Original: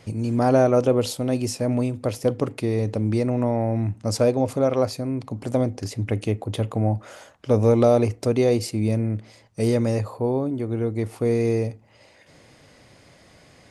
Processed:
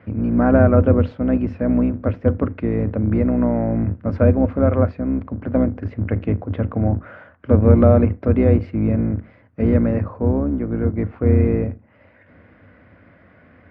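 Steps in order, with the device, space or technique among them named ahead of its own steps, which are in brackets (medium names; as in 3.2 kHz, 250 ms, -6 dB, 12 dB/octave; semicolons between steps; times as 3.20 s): sub-octave bass pedal (octave divider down 2 oct, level +4 dB; cabinet simulation 83–2100 Hz, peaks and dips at 91 Hz +7 dB, 130 Hz -9 dB, 250 Hz +5 dB, 390 Hz -5 dB, 830 Hz -6 dB, 1.5 kHz +6 dB); trim +2.5 dB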